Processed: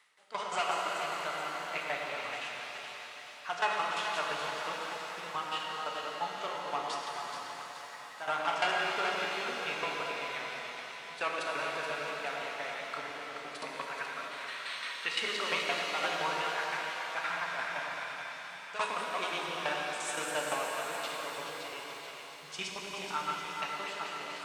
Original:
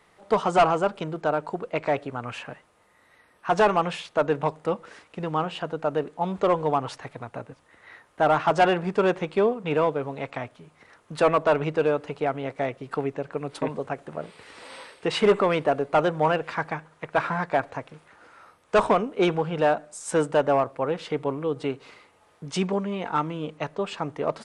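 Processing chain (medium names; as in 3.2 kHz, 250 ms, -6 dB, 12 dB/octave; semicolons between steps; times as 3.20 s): chunks repeated in reverse 127 ms, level -4 dB; frequency weighting A; time-frequency box 13.73–15.09 s, 940–4500 Hz +9 dB; amplifier tone stack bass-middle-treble 5-5-5; tremolo saw down 5.8 Hz, depth 90%; two-band feedback delay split 640 Hz, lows 106 ms, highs 427 ms, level -8 dB; pitch-shifted reverb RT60 4 s, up +7 st, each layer -8 dB, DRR -1 dB; trim +5.5 dB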